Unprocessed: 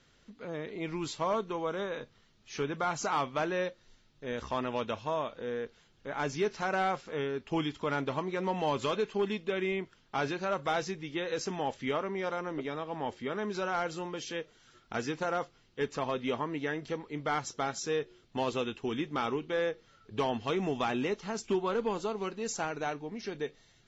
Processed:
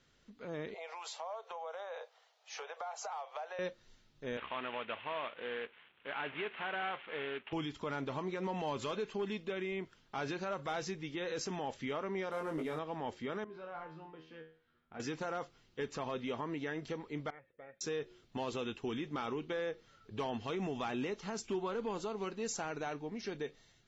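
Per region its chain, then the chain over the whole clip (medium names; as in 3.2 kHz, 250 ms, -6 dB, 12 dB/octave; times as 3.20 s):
0.74–3.59 s: steep high-pass 460 Hz 72 dB/octave + peaking EQ 750 Hz +13 dB 0.59 oct + compression 5:1, threshold -39 dBFS
4.37–7.53 s: CVSD coder 16 kbps + high-pass 530 Hz 6 dB/octave + treble shelf 2.1 kHz +12 dB
12.31–12.79 s: CVSD coder 64 kbps + treble shelf 3.7 kHz -8.5 dB + doubling 19 ms -3.5 dB
13.44–15.00 s: distance through air 390 m + feedback comb 80 Hz, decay 0.44 s, mix 90%
17.30–17.81 s: cascade formant filter e + peaking EQ 540 Hz -6.5 dB 2.4 oct
whole clip: peak limiter -27.5 dBFS; level rider gain up to 3.5 dB; trim -5.5 dB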